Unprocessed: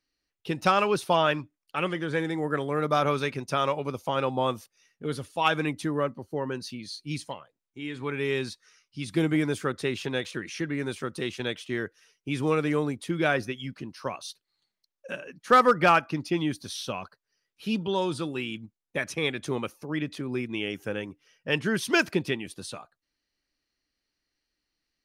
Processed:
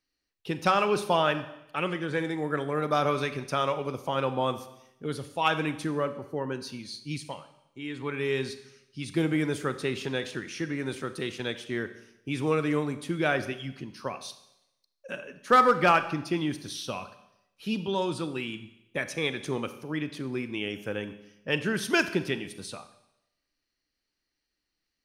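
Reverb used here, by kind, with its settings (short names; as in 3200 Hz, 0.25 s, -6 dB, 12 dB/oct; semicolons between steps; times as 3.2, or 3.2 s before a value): Schroeder reverb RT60 0.86 s, combs from 30 ms, DRR 11 dB; gain -1.5 dB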